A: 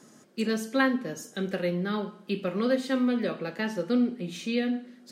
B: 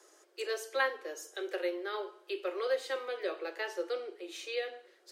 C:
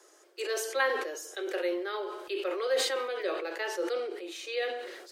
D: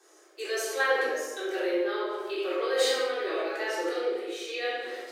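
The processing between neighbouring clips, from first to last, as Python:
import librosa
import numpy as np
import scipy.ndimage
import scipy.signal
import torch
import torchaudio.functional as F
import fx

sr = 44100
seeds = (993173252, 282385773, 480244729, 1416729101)

y1 = scipy.signal.sosfilt(scipy.signal.butter(16, 330.0, 'highpass', fs=sr, output='sos'), x)
y1 = F.gain(torch.from_numpy(y1), -4.0).numpy()
y2 = fx.sustainer(y1, sr, db_per_s=46.0)
y2 = F.gain(torch.from_numpy(y2), 2.0).numpy()
y3 = fx.room_shoebox(y2, sr, seeds[0], volume_m3=580.0, walls='mixed', distance_m=3.6)
y3 = F.gain(torch.from_numpy(y3), -5.5).numpy()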